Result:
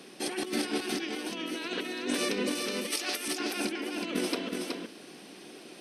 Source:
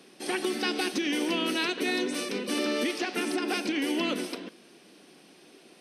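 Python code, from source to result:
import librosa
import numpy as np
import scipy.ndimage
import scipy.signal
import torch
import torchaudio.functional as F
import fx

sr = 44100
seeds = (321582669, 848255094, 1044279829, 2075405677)

y = fx.riaa(x, sr, side='recording', at=(2.55, 3.28))
y = fx.over_compress(y, sr, threshold_db=-33.0, ratio=-0.5)
y = y + 10.0 ** (-4.0 / 20.0) * np.pad(y, (int(371 * sr / 1000.0), 0))[:len(y)]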